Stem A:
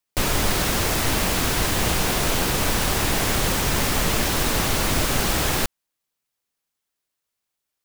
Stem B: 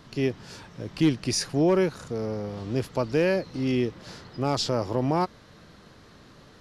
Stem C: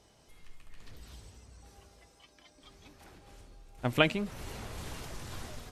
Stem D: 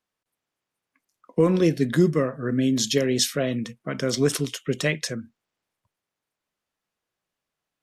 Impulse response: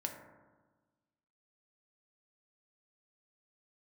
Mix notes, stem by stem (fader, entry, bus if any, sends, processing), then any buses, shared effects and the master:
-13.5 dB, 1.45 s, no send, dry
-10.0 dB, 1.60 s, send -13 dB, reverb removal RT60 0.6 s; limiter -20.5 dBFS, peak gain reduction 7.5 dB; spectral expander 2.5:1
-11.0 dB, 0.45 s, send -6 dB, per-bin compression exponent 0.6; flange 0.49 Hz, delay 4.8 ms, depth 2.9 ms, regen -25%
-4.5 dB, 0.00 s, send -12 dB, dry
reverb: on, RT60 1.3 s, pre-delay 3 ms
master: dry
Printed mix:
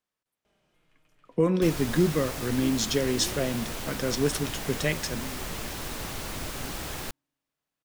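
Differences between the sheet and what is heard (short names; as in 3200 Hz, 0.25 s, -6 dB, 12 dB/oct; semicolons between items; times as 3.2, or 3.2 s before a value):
stem C -11.0 dB -> -22.5 dB; reverb return -8.5 dB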